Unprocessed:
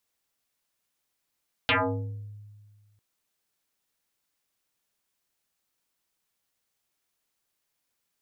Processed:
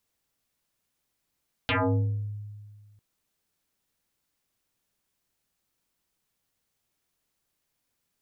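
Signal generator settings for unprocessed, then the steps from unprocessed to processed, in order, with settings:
FM tone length 1.30 s, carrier 104 Hz, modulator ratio 3.58, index 10, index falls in 0.73 s exponential, decay 1.75 s, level -18.5 dB
bass shelf 320 Hz +8.5 dB; peak limiter -19.5 dBFS

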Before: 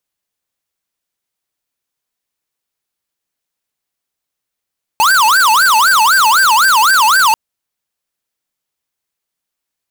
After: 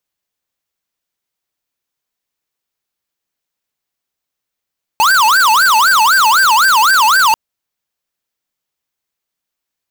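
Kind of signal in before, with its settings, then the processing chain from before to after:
siren wail 858–1580 Hz 3.9 per s square -9.5 dBFS 2.34 s
peaking EQ 9.8 kHz -4 dB 0.48 oct

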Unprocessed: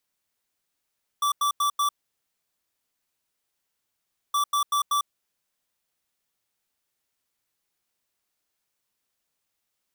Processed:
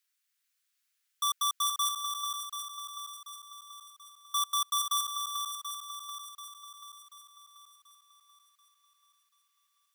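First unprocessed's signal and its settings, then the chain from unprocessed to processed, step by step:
beep pattern square 1.16 kHz, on 0.10 s, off 0.09 s, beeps 4, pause 2.45 s, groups 2, -23 dBFS
high-pass 1.4 kHz 24 dB/octave; shuffle delay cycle 735 ms, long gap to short 1.5:1, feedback 45%, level -6 dB

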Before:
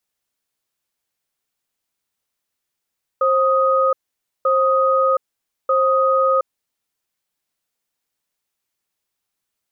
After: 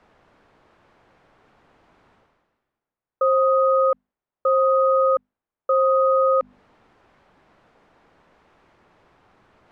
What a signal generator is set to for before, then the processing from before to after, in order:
cadence 531 Hz, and 1.25 kHz, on 0.72 s, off 0.52 s, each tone -16 dBFS 3.57 s
low-pass 1.2 kHz 12 dB/octave; hum notches 50/100/150/200/250 Hz; reverse; upward compressor, threshold -32 dBFS; reverse

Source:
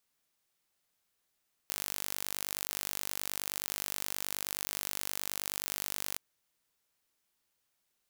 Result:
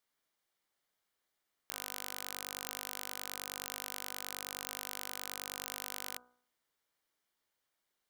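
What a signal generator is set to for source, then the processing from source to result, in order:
pulse train 49.5 per s, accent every 0, -8.5 dBFS 4.47 s
tone controls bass -6 dB, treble -7 dB; band-stop 2.6 kHz, Q 8.1; de-hum 61.76 Hz, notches 26

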